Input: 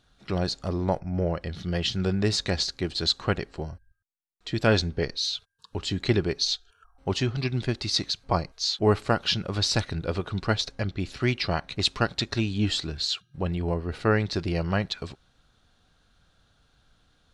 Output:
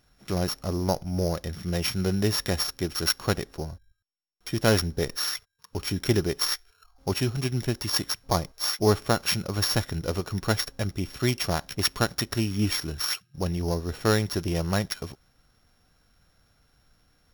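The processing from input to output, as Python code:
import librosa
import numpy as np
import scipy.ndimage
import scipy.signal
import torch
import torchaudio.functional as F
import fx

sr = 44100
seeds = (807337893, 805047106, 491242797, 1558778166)

y = np.r_[np.sort(x[:len(x) // 8 * 8].reshape(-1, 8), axis=1).ravel(), x[len(x) // 8 * 8:]]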